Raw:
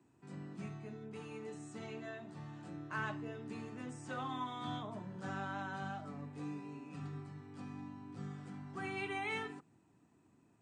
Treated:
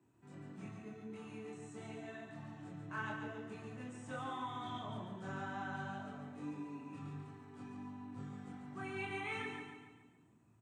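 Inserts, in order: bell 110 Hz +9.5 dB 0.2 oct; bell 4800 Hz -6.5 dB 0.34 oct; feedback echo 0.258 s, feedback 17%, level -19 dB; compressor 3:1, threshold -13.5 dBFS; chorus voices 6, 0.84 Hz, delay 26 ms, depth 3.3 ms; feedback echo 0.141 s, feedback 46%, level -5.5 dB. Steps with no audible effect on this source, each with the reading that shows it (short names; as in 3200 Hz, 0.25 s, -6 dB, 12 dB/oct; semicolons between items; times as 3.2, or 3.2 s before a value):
compressor, threshold -13.5 dBFS: input peak -26.0 dBFS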